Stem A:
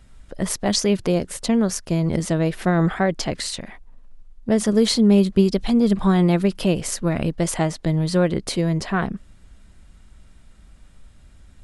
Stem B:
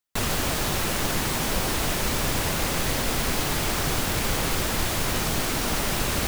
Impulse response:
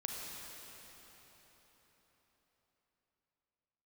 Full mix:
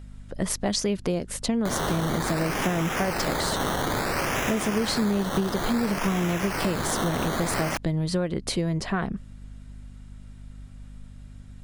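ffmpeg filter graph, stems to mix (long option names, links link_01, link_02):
-filter_complex "[0:a]volume=-1dB[link_01];[1:a]highpass=140,highshelf=frequency=4500:gain=8,acrusher=samples=14:mix=1:aa=0.000001:lfo=1:lforange=8.4:lforate=0.58,adelay=1500,volume=-1.5dB[link_02];[link_01][link_02]amix=inputs=2:normalize=0,aeval=exprs='val(0)+0.00794*(sin(2*PI*50*n/s)+sin(2*PI*2*50*n/s)/2+sin(2*PI*3*50*n/s)/3+sin(2*PI*4*50*n/s)/4+sin(2*PI*5*50*n/s)/5)':channel_layout=same,acompressor=threshold=-22dB:ratio=5"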